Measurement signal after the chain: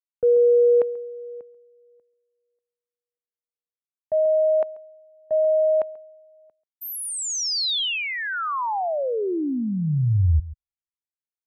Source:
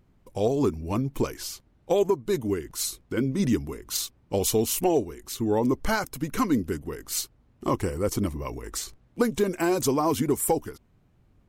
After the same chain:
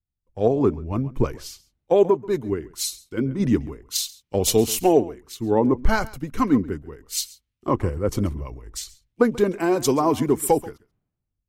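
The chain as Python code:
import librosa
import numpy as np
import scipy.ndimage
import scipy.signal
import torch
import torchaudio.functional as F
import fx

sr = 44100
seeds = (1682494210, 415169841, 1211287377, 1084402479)

y = fx.high_shelf(x, sr, hz=4900.0, db=-10.0)
y = y + 10.0 ** (-17.0 / 20.0) * np.pad(y, (int(137 * sr / 1000.0), 0))[:len(y)]
y = fx.band_widen(y, sr, depth_pct=100)
y = F.gain(torch.from_numpy(y), 3.5).numpy()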